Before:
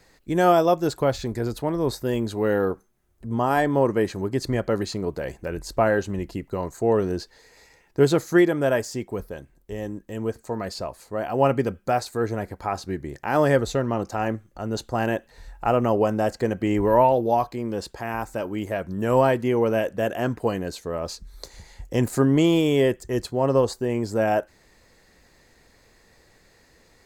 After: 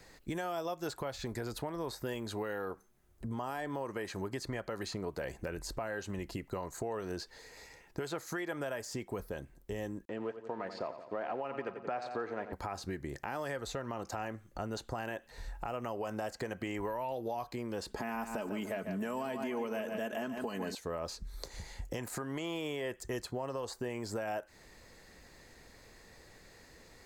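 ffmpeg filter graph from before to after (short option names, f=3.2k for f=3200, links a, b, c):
-filter_complex "[0:a]asettb=1/sr,asplit=3[a][b][c];[a]atrim=end=10.054[d];[b]atrim=start=10.05:end=12.53,asetpts=PTS-STARTPTS,afade=t=in:d=0.004:c=qsin,afade=t=out:st=2.476:d=0.004:c=qsin,aeval=exprs='sgn(val(0))*max(abs(val(0))-0.00422,0)':c=same,highpass=220,lowpass=2.5k,aecho=1:1:88|176|264|352|440:0.224|0.107|0.0516|0.0248|0.0119,atrim=end_sample=109368[e];[c]atrim=start=12.526[f];[d][e]acrossfade=d=0.004:c1=hsin:c2=qsin[g];[g][f]acrossfade=d=0.004:c1=qsin:c2=hsin,asettb=1/sr,asplit=3[h][i][j];[h]atrim=end=17.874[k];[i]atrim=start=17.87:end=20.75,asetpts=PTS-STARTPTS,afade=t=in:d=0.004:c=qsin,afade=t=out:st=2.876:d=0.004:c=qsin,equalizer=f=250:t=o:w=1.1:g=11.5,aecho=1:1:4.7:0.54,atrim=end_sample=127008,aecho=1:1:145|290|435|580:0.282|0.0958|0.0326|0.0111,atrim=end_sample=127008[l];[j]atrim=start=20.746[m];[k][l]acrossfade=d=0.004:c1=hsin:c2=qsin[n];[n][m]acrossfade=d=0.004:c1=qsin:c2=hsin,acrossover=split=650|2400[o][p][q];[o]acompressor=threshold=-34dB:ratio=4[r];[p]acompressor=threshold=-28dB:ratio=4[s];[q]acompressor=threshold=-40dB:ratio=4[t];[r][s][t]amix=inputs=3:normalize=0,alimiter=limit=-22dB:level=0:latency=1:release=176,acompressor=threshold=-38dB:ratio=2"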